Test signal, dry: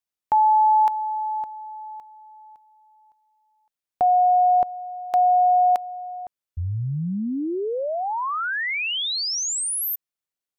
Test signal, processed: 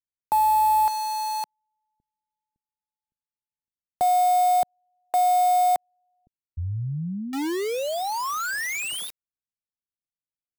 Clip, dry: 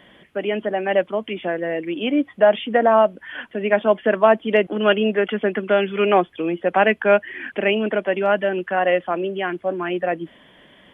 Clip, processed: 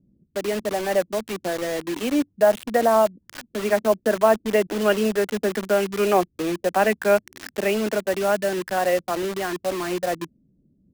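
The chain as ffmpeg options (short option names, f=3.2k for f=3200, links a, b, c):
-filter_complex "[0:a]highshelf=f=2.4k:g=-9.5,acrossover=split=270[a][b];[b]acrusher=bits=4:mix=0:aa=0.000001[c];[a][c]amix=inputs=2:normalize=0,volume=-2dB"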